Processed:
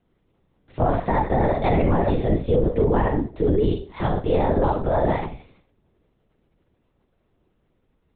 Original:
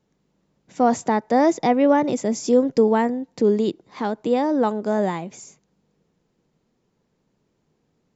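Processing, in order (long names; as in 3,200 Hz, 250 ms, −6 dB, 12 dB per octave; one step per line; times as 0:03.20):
four-comb reverb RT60 0.4 s, combs from 28 ms, DRR 1 dB
linear-prediction vocoder at 8 kHz whisper
brickwall limiter −11 dBFS, peak gain reduction 10.5 dB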